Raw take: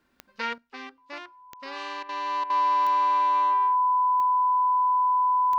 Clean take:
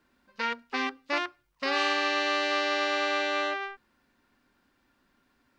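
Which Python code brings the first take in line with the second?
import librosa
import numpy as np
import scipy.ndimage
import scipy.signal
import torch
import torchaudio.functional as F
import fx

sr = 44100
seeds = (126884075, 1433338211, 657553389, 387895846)

y = fx.fix_declick_ar(x, sr, threshold=10.0)
y = fx.notch(y, sr, hz=1000.0, q=30.0)
y = fx.fix_interpolate(y, sr, at_s=(2.03, 2.44), length_ms=58.0)
y = fx.gain(y, sr, db=fx.steps((0.0, 0.0), (0.58, 10.5)))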